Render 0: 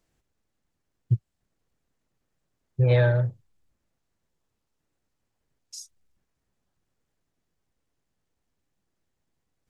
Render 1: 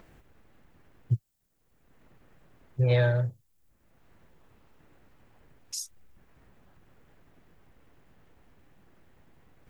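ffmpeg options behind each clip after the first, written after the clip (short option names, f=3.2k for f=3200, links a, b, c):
-filter_complex "[0:a]aemphasis=mode=production:type=50fm,acrossover=split=2700[a][b];[a]acompressor=mode=upward:threshold=-35dB:ratio=2.5[c];[c][b]amix=inputs=2:normalize=0,volume=-3dB"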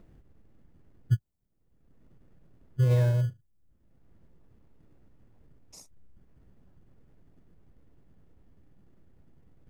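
-filter_complex "[0:a]tiltshelf=f=630:g=7.5,asplit=2[a][b];[b]acrusher=samples=28:mix=1:aa=0.000001,volume=-9dB[c];[a][c]amix=inputs=2:normalize=0,volume=-8dB"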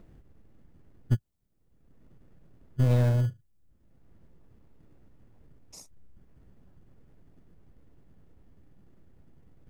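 -af "aeval=exprs='clip(val(0),-1,0.0501)':c=same,volume=2dB"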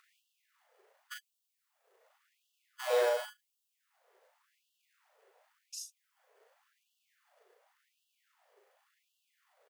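-filter_complex "[0:a]asplit=2[a][b];[b]adelay=37,volume=-3.5dB[c];[a][c]amix=inputs=2:normalize=0,afftfilt=real='re*gte(b*sr/1024,380*pow(2700/380,0.5+0.5*sin(2*PI*0.9*pts/sr)))':imag='im*gte(b*sr/1024,380*pow(2700/380,0.5+0.5*sin(2*PI*0.9*pts/sr)))':win_size=1024:overlap=0.75,volume=4dB"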